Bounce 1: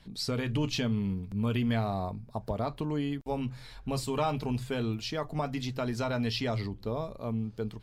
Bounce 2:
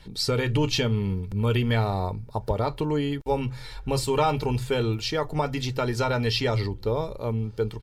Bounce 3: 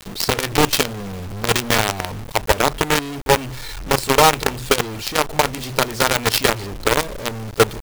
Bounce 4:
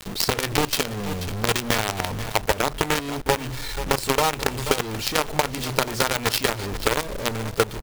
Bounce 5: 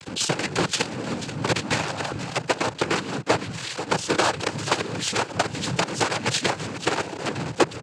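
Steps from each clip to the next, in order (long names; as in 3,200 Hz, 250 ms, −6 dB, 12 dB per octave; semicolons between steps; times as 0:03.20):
comb filter 2.2 ms, depth 50%; level +6.5 dB
parametric band 120 Hz −6 dB 0.92 octaves; in parallel at +0.5 dB: speech leveller within 4 dB 2 s; on the sum: log-companded quantiser 2 bits; level −3.5 dB
single-tap delay 483 ms −17.5 dB; downward compressor 10 to 1, threshold −15 dBFS, peak gain reduction 9.5 dB
cochlear-implant simulation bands 8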